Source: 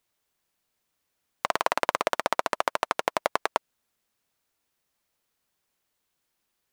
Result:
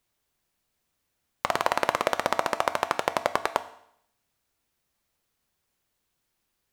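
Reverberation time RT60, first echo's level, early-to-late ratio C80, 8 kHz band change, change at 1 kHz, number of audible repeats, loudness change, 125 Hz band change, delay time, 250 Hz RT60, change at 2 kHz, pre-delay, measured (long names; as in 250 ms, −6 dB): 0.70 s, no echo audible, 17.5 dB, +0.5 dB, +0.5 dB, no echo audible, +0.5 dB, +5.5 dB, no echo audible, 0.70 s, +0.5 dB, 4 ms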